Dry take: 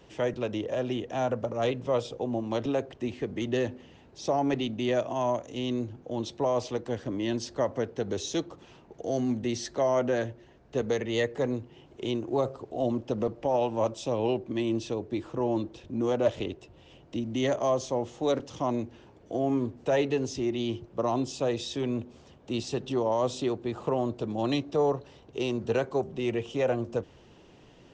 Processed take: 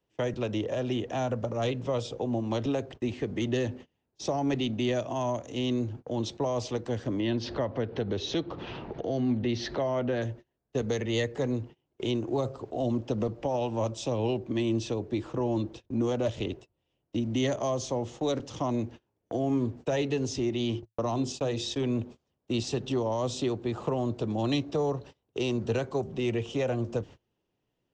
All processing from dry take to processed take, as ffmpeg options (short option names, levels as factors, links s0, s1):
-filter_complex "[0:a]asettb=1/sr,asplit=3[s0][s1][s2];[s0]atrim=end=7.204[s3];[s1]atrim=start=7.2:end=10.22,asetpts=PTS-STARTPTS,afade=t=in:d=0.004:c=qsin,afade=t=out:st=3.016:d=0.004:c=qsin,lowpass=f=4200:w=0.5412,lowpass=f=4200:w=1.3066,acompressor=mode=upward:threshold=0.0355:ratio=2.5:attack=3.2:release=140:knee=2.83:detection=peak[s4];[s2]atrim=start=10.216[s5];[s3][s4]acrossfade=d=0.004:c1=hsin:c2=qsin[s6];[s6][s5]acrossfade=d=0.004:c1=qsin:c2=hsin,asettb=1/sr,asplit=3[s7][s8][s9];[s7]atrim=end=20.494[s10];[s8]atrim=start=20.49:end=21.77,asetpts=PTS-STARTPTS,afade=t=in:d=0.004:c=qsin,afade=t=out:st=1.276:d=0.004:c=qsin,bandreject=f=50:t=h:w=6,bandreject=f=100:t=h:w=6,bandreject=f=150:t=h:w=6,bandreject=f=200:t=h:w=6,bandreject=f=250:t=h:w=6,bandreject=f=300:t=h:w=6,bandreject=f=350:t=h:w=6,bandreject=f=400:t=h:w=6,agate=range=0.0316:threshold=0.00891:ratio=16:release=100:detection=peak[s11];[s9]atrim=start=21.766[s12];[s10][s11]acrossfade=d=0.004:c1=hsin:c2=qsin[s13];[s13][s12]acrossfade=d=0.004:c1=qsin:c2=hsin,agate=range=0.0398:threshold=0.00631:ratio=16:detection=peak,equalizer=f=110:t=o:w=0.21:g=3.5,acrossover=split=250|3000[s14][s15][s16];[s15]acompressor=threshold=0.0224:ratio=2.5[s17];[s14][s17][s16]amix=inputs=3:normalize=0,volume=1.33"